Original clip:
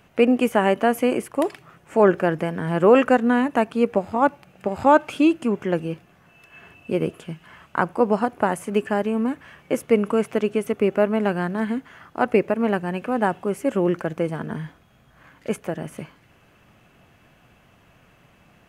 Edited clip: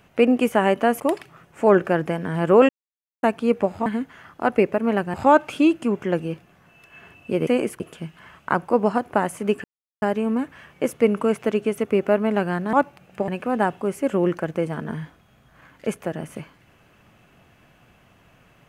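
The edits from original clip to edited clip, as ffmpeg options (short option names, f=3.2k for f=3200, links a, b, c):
-filter_complex "[0:a]asplit=11[a][b][c][d][e][f][g][h][i][j][k];[a]atrim=end=1.002[l];[b]atrim=start=1.328:end=3.02,asetpts=PTS-STARTPTS,afade=t=out:st=1.688:d=0.004:c=hsin[m];[c]atrim=start=3.02:end=3.56,asetpts=PTS-STARTPTS,volume=0[n];[d]atrim=start=3.56:end=4.192,asetpts=PTS-STARTPTS,afade=t=in:d=0.004:c=hsin[o];[e]atrim=start=11.618:end=12.902[p];[f]atrim=start=4.738:end=7.072[q];[g]atrim=start=0.998:end=1.332[r];[h]atrim=start=7.068:end=8.91,asetpts=PTS-STARTPTS,afade=t=out:st=1.838:d=0.004:c=hsin,apad=pad_dur=0.38[s];[i]atrim=start=8.91:end=11.622,asetpts=PTS-STARTPTS,afade=t=in:d=0.004:c=hsin[t];[j]atrim=start=4.188:end=4.742[u];[k]atrim=start=12.898[v];[m][n][o]concat=n=3:v=0:a=1[w];[l][w]acrossfade=d=0.004:c1=hsin:c2=hsin[x];[x][p]acrossfade=d=0.004:c1=hsin:c2=hsin[y];[y][q]acrossfade=d=0.004:c1=hsin:c2=hsin[z];[z][r]acrossfade=d=0.004:c1=hsin:c2=hsin[aa];[s][t]concat=n=2:v=0:a=1[ab];[aa][ab]acrossfade=d=0.004:c1=hsin:c2=hsin[ac];[ac][u]acrossfade=d=0.004:c1=hsin:c2=hsin[ad];[ad][v]acrossfade=d=0.004:c1=hsin:c2=hsin"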